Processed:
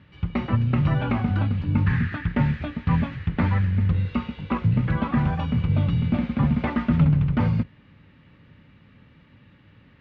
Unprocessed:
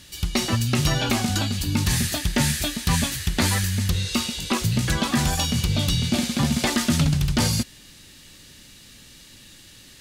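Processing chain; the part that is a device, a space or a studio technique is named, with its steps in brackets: sub-octave bass pedal (octave divider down 2 oct, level -4 dB; cabinet simulation 76–2000 Hz, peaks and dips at 100 Hz +5 dB, 160 Hz +4 dB, 360 Hz -7 dB, 700 Hz -5 dB, 1.7 kHz -6 dB); 1.86–2.33 s: fifteen-band graphic EQ 630 Hz -9 dB, 1.6 kHz +10 dB, 10 kHz -4 dB

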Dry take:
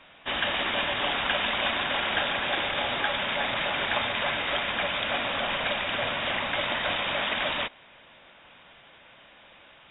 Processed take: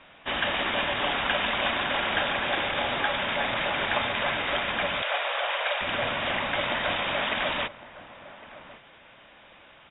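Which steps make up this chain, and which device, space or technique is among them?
shout across a valley (distance through air 150 m; echo from a far wall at 190 m, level -16 dB); 5.02–5.81 s: steep high-pass 460 Hz 36 dB/octave; trim +2 dB

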